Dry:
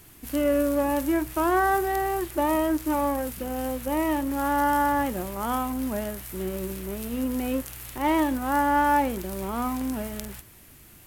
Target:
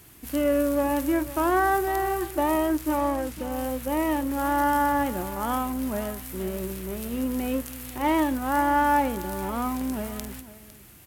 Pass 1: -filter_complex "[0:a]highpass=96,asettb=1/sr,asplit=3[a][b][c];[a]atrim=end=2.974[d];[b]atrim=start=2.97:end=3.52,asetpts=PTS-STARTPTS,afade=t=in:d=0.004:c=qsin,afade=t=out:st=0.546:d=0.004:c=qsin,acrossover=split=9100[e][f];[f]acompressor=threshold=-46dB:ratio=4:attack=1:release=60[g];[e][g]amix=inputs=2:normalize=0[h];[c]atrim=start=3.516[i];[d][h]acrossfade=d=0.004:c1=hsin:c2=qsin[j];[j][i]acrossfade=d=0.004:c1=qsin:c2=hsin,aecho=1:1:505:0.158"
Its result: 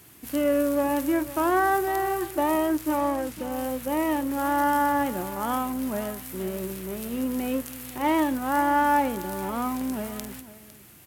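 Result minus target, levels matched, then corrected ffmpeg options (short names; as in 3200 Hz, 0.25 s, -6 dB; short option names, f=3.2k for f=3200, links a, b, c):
125 Hz band -3.5 dB
-filter_complex "[0:a]highpass=36,asettb=1/sr,asplit=3[a][b][c];[a]atrim=end=2.974[d];[b]atrim=start=2.97:end=3.52,asetpts=PTS-STARTPTS,afade=t=in:d=0.004:c=qsin,afade=t=out:st=0.546:d=0.004:c=qsin,acrossover=split=9100[e][f];[f]acompressor=threshold=-46dB:ratio=4:attack=1:release=60[g];[e][g]amix=inputs=2:normalize=0[h];[c]atrim=start=3.516[i];[d][h]acrossfade=d=0.004:c1=hsin:c2=qsin[j];[j][i]acrossfade=d=0.004:c1=qsin:c2=hsin,aecho=1:1:505:0.158"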